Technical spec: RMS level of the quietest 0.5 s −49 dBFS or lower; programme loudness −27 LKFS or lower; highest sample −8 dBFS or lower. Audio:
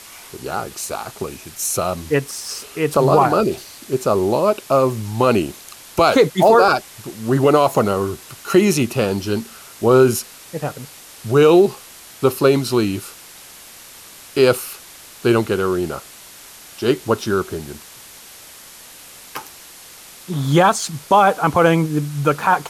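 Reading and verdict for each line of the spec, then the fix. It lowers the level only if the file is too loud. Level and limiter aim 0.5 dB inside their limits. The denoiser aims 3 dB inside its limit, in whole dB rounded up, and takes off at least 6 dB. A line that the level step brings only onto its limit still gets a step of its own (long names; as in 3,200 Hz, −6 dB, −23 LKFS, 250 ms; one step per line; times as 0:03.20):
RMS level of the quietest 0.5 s −41 dBFS: out of spec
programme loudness −17.5 LKFS: out of spec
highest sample −3.0 dBFS: out of spec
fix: level −10 dB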